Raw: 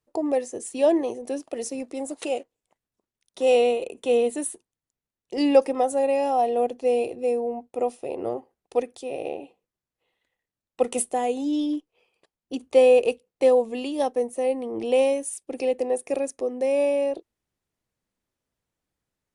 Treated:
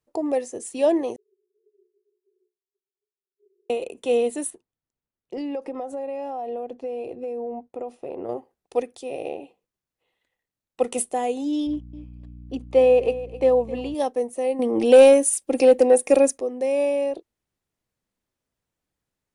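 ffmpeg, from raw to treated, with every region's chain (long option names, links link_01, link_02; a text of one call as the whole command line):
ffmpeg -i in.wav -filter_complex "[0:a]asettb=1/sr,asplit=3[link_01][link_02][link_03];[link_01]atrim=end=1.164[link_04];[link_02]atrim=start=1.16:end=3.7,asetpts=PTS-STARTPTS,afade=type=in:duration=0.004:curve=qsin,afade=type=out:start_time=2.536:duration=0.004:curve=qsin,asuperpass=centerf=170:order=20:qfactor=2.5,afreqshift=220[link_05];[link_03]atrim=start=3.696[link_06];[link_04][link_05]acrossfade=duration=0.004:curve1=hsin:curve2=qsin[link_07];[link_07][link_06]acrossfade=duration=0.004:curve1=qsin:curve2=hsin,asettb=1/sr,asplit=3[link_08][link_09][link_10];[link_08]atrim=end=4.504[link_11];[link_09]atrim=start=4.5:end=8.29,asetpts=PTS-STARTPTS,afade=type=in:duration=0.004:curve=qsin,afade=type=out:start_time=3.786:duration=0.004:curve=qsin,acompressor=threshold=-27dB:ratio=6:attack=3.2:release=140:knee=1:detection=peak,lowpass=frequency=1800:poles=1[link_12];[link_10]atrim=start=8.286[link_13];[link_11][link_12]acrossfade=duration=0.004:curve1=hsin:curve2=qsin[link_14];[link_14][link_13]acrossfade=duration=0.004:curve1=qsin:curve2=hsin,asettb=1/sr,asplit=3[link_15][link_16][link_17];[link_15]atrim=end=11.674[link_18];[link_16]atrim=start=11.67:end=13.95,asetpts=PTS-STARTPTS,afade=type=in:duration=0.004:curve=qsin,afade=type=out:start_time=2.276:duration=0.004:curve=qsin,lowpass=frequency=2200:poles=1,aecho=1:1:262|524:0.168|0.0302,atrim=end_sample=100548,aeval=exprs='val(0)+0.01*(sin(2*PI*60*n/s)+sin(2*PI*2*60*n/s)/2+sin(2*PI*3*60*n/s)/3+sin(2*PI*4*60*n/s)/4+sin(2*PI*5*60*n/s)/5)':channel_layout=same[link_19];[link_17]atrim=start=13.946[link_20];[link_18][link_19]acrossfade=duration=0.004:curve1=hsin:curve2=qsin[link_21];[link_21][link_20]acrossfade=duration=0.004:curve1=qsin:curve2=hsin,asettb=1/sr,asplit=3[link_22][link_23][link_24];[link_22]atrim=end=14.594[link_25];[link_23]atrim=start=14.59:end=16.38,asetpts=PTS-STARTPTS,afade=type=in:duration=0.004:curve=qsin,afade=type=out:start_time=1.786:duration=0.004:curve=qsin,highshelf=frequency=7800:gain=4,aecho=1:1:3.7:0.49,atrim=end_sample=78939,acontrast=88[link_26];[link_24]atrim=start=16.376[link_27];[link_25][link_26]acrossfade=duration=0.004:curve1=hsin:curve2=qsin[link_28];[link_28][link_27]acrossfade=duration=0.004:curve1=qsin:curve2=hsin" out.wav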